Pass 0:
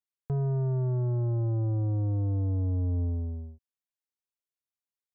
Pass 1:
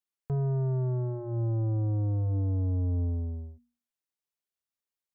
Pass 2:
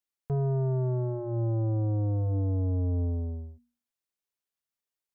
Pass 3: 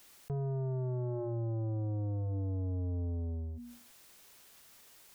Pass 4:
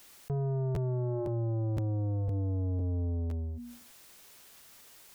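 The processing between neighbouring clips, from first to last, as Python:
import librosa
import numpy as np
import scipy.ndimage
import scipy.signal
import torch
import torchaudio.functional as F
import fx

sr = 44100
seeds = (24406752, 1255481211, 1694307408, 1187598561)

y1 = fx.hum_notches(x, sr, base_hz=60, count=5)
y2 = fx.dynamic_eq(y1, sr, hz=560.0, q=0.85, threshold_db=-46.0, ratio=4.0, max_db=5)
y3 = fx.env_flatten(y2, sr, amount_pct=70)
y3 = F.gain(torch.from_numpy(y3), -8.0).numpy()
y4 = fx.buffer_crackle(y3, sr, first_s=0.74, period_s=0.51, block=512, kind='repeat')
y4 = F.gain(torch.from_numpy(y4), 3.5).numpy()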